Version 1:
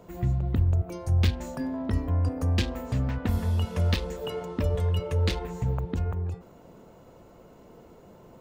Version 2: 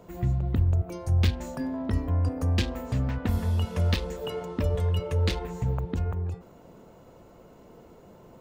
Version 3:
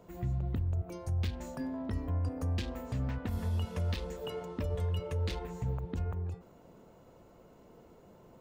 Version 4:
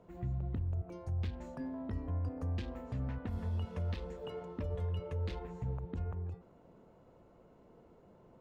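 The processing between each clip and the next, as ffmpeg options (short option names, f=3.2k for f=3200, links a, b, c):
-af anull
-af "alimiter=limit=-19.5dB:level=0:latency=1:release=69,volume=-6dB"
-af "aemphasis=mode=reproduction:type=75kf,volume=-3.5dB"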